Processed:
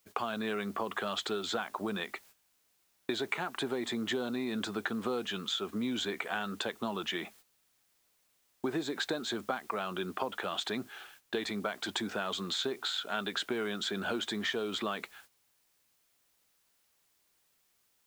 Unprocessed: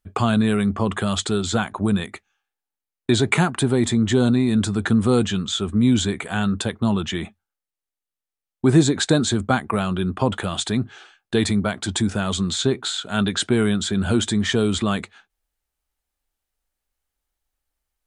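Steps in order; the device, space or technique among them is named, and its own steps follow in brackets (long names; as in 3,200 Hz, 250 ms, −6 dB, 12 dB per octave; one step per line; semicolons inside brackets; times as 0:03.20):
baby monitor (band-pass filter 410–4,100 Hz; downward compressor 12 to 1, threshold −27 dBFS, peak gain reduction 12.5 dB; white noise bed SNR 24 dB; noise gate −53 dBFS, range −12 dB)
level −3 dB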